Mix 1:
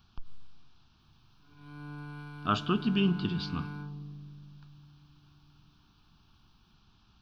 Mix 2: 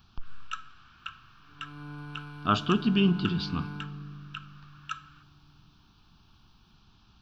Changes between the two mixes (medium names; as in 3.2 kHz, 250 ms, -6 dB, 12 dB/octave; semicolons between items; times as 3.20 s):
speech +3.5 dB; first sound: unmuted; second sound: send on